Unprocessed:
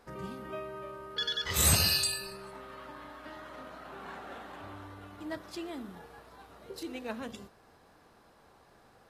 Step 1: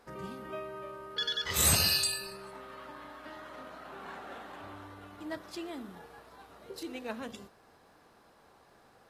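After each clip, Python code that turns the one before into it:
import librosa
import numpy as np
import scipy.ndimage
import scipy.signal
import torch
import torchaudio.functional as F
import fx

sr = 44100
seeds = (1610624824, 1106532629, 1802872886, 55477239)

y = fx.low_shelf(x, sr, hz=130.0, db=-5.5)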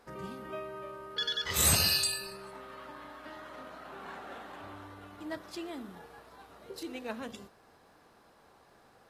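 y = x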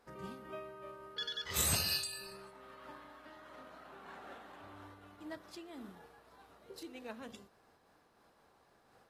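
y = fx.am_noise(x, sr, seeds[0], hz=5.7, depth_pct=60)
y = F.gain(torch.from_numpy(y), -3.5).numpy()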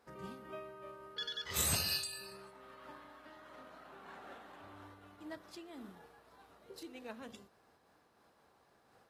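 y = scipy.signal.sosfilt(scipy.signal.butter(2, 47.0, 'highpass', fs=sr, output='sos'), x)
y = F.gain(torch.from_numpy(y), -1.0).numpy()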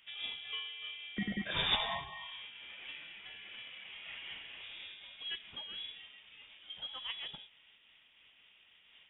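y = fx.freq_invert(x, sr, carrier_hz=3600)
y = F.gain(torch.from_numpy(y), 5.5).numpy()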